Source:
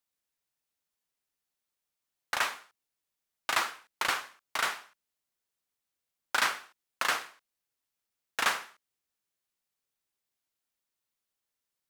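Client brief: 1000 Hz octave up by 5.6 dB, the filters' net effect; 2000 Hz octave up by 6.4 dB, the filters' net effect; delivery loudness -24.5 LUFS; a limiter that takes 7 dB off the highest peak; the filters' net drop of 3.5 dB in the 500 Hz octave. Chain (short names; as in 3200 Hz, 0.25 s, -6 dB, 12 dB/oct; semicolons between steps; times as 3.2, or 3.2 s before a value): bell 500 Hz -8.5 dB; bell 1000 Hz +6.5 dB; bell 2000 Hz +6.5 dB; gain +5.5 dB; limiter -9.5 dBFS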